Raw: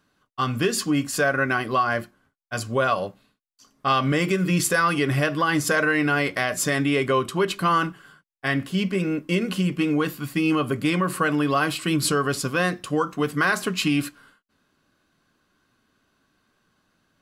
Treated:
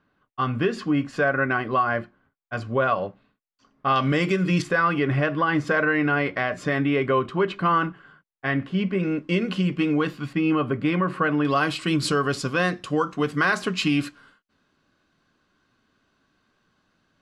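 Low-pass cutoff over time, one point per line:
2.4 kHz
from 3.96 s 5.5 kHz
from 4.62 s 2.4 kHz
from 9.03 s 4.3 kHz
from 10.33 s 2.4 kHz
from 11.45 s 6.1 kHz

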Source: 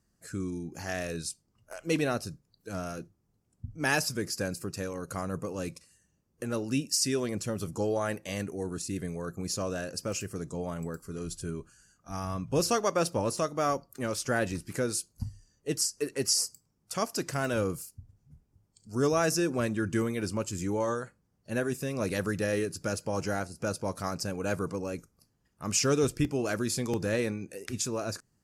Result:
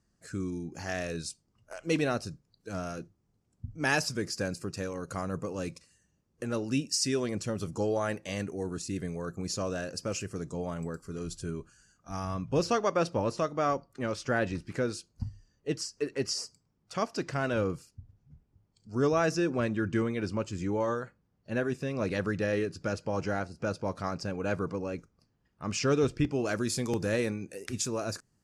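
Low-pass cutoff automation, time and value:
12.23 s 7.6 kHz
12.66 s 4.2 kHz
26.20 s 4.2 kHz
26.79 s 11 kHz

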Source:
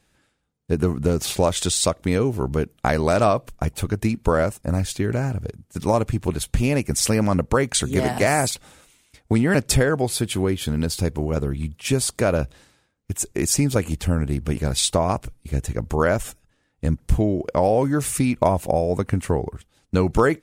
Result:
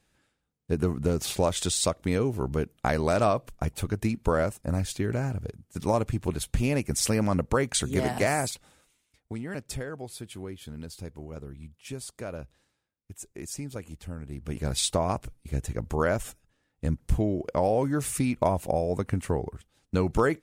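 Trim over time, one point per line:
8.21 s -5.5 dB
9.33 s -17 dB
14.23 s -17 dB
14.68 s -6 dB

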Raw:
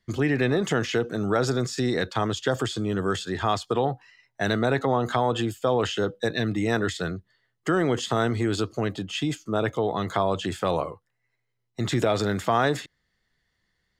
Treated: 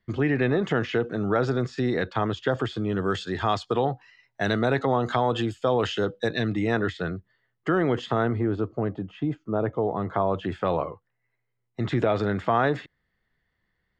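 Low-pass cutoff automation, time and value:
2.81 s 2.8 kHz
3.24 s 5 kHz
6.38 s 5 kHz
6.86 s 2.7 kHz
8.07 s 2.7 kHz
8.50 s 1.1 kHz
9.95 s 1.1 kHz
10.65 s 2.5 kHz

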